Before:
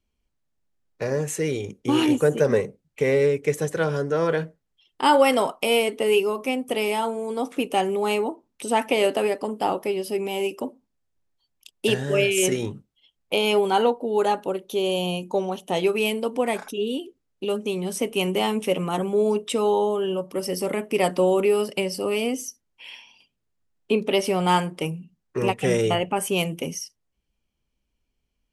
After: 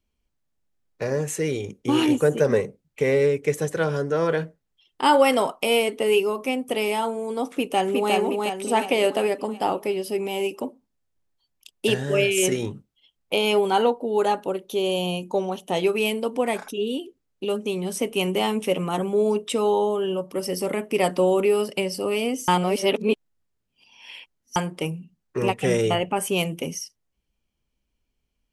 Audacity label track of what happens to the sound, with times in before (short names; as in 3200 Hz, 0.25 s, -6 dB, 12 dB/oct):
7.490000	8.130000	echo throw 0.36 s, feedback 50%, level -2.5 dB
22.480000	24.560000	reverse